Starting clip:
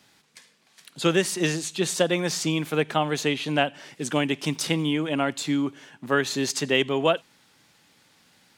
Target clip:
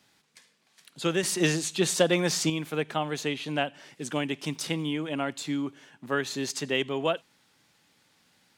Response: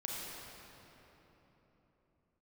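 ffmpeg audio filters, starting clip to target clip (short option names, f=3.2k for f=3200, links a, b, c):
-filter_complex "[0:a]asettb=1/sr,asplit=3[a][b][c];[a]atrim=end=1.234[d];[b]atrim=start=1.23:end=2.5,asetpts=PTS-STARTPTS,afade=t=in:d=0.004:c=qsin,afade=t=out:st=1.266:d=0.004:c=qsin,acontrast=46[e];[c]atrim=start=2.496[f];[d][e]acrossfade=d=0.004:c1=hsin:c2=qsin[g];[g][f]acrossfade=d=0.004:c1=qsin:c2=hsin,volume=-5.5dB"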